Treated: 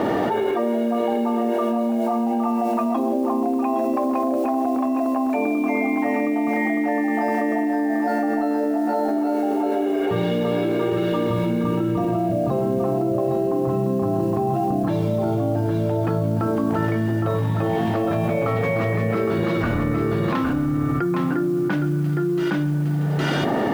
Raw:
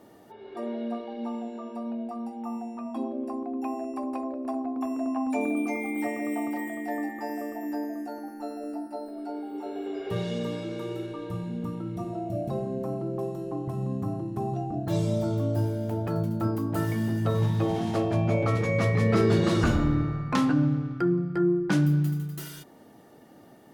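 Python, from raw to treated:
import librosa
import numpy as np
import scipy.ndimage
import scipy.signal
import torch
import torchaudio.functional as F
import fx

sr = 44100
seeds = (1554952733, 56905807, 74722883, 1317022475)

y = scipy.signal.sosfilt(scipy.signal.butter(2, 2600.0, 'lowpass', fs=sr, output='sos'), x)
y = fx.low_shelf(y, sr, hz=170.0, db=-7.5)
y = fx.mod_noise(y, sr, seeds[0], snr_db=32)
y = y + 10.0 ** (-5.5 / 20.0) * np.pad(y, (int(813 * sr / 1000.0), 0))[:len(y)]
y = fx.env_flatten(y, sr, amount_pct=100)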